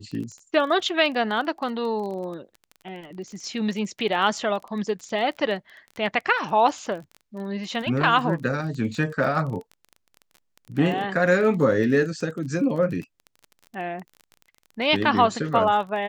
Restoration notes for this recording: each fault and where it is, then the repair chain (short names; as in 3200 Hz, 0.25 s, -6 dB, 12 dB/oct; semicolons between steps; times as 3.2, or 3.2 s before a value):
crackle 23/s -32 dBFS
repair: de-click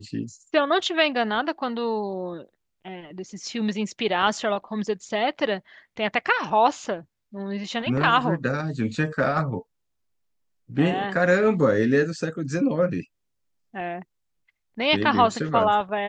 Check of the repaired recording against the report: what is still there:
none